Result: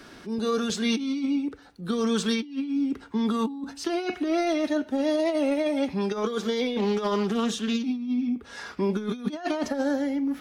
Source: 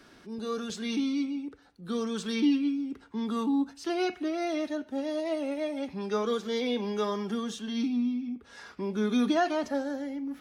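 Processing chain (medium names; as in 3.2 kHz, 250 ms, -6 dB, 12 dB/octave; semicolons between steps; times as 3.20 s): compressor with a negative ratio -31 dBFS, ratio -0.5; 6.78–7.85 s: loudspeaker Doppler distortion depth 0.18 ms; trim +6 dB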